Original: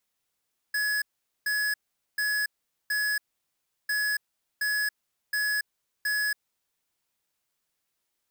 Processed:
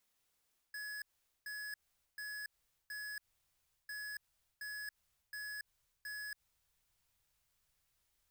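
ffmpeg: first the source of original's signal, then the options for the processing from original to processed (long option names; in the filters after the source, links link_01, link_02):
-f lavfi -i "aevalsrc='0.0447*(2*lt(mod(1690*t,1),0.5)-1)*clip(min(mod(mod(t,3.15),0.72),0.28-mod(mod(t,3.15),0.72))/0.005,0,1)*lt(mod(t,3.15),2.88)':duration=6.3:sample_rate=44100"
-af "alimiter=level_in=12.5dB:limit=-24dB:level=0:latency=1:release=91,volume=-12.5dB,asubboost=boost=8.5:cutoff=92,areverse,acompressor=threshold=-46dB:ratio=6,areverse"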